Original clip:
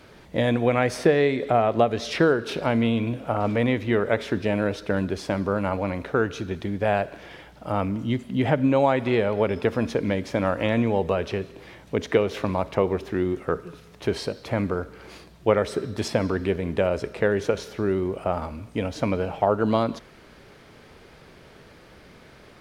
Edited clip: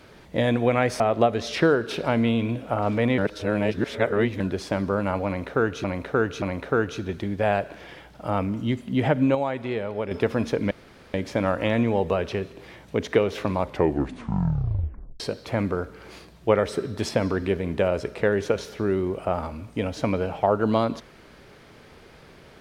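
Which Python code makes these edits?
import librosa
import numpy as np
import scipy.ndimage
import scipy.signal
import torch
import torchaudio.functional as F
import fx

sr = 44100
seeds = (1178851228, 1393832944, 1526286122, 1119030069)

y = fx.edit(x, sr, fx.cut(start_s=1.0, length_s=0.58),
    fx.reverse_span(start_s=3.76, length_s=1.22),
    fx.repeat(start_s=5.84, length_s=0.58, count=3),
    fx.clip_gain(start_s=8.77, length_s=0.76, db=-6.5),
    fx.insert_room_tone(at_s=10.13, length_s=0.43),
    fx.tape_stop(start_s=12.58, length_s=1.61), tone=tone)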